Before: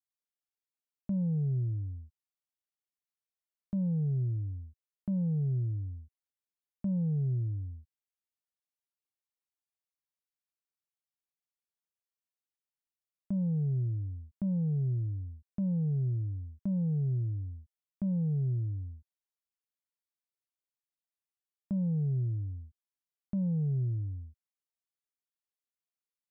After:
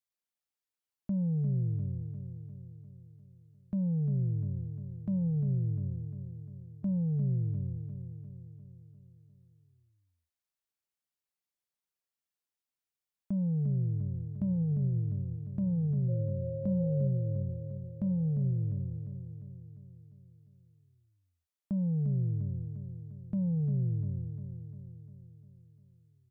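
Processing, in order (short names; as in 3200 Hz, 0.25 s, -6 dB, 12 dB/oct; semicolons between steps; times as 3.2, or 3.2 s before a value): 16.08–17.06 whine 540 Hz -39 dBFS; feedback echo 0.35 s, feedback 56%, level -8.5 dB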